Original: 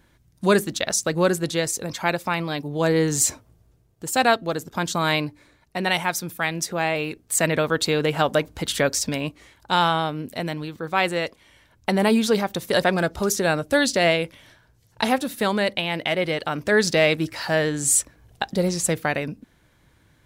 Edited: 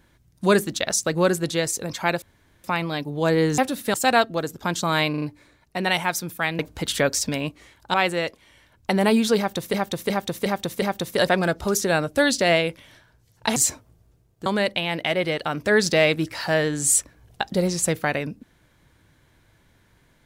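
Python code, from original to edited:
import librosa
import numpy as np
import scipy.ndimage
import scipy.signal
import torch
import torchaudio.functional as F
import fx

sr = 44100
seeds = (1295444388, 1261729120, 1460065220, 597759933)

y = fx.edit(x, sr, fx.insert_room_tone(at_s=2.22, length_s=0.42),
    fx.swap(start_s=3.16, length_s=0.9, other_s=15.11, other_length_s=0.36),
    fx.stutter(start_s=5.22, slice_s=0.04, count=4),
    fx.cut(start_s=6.59, length_s=1.8),
    fx.cut(start_s=9.74, length_s=1.19),
    fx.repeat(start_s=12.37, length_s=0.36, count=5), tone=tone)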